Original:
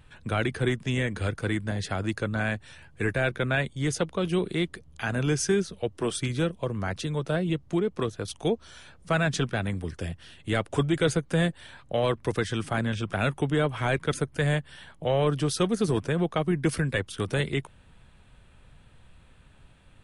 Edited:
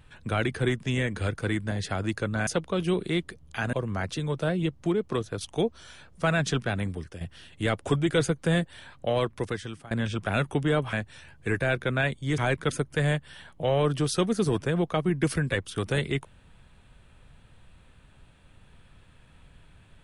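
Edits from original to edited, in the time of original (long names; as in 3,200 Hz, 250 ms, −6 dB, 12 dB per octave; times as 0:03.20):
0:02.47–0:03.92: move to 0:13.80
0:05.18–0:06.60: remove
0:09.75–0:10.08: fade out, to −11 dB
0:11.79–0:12.78: fade out equal-power, to −22 dB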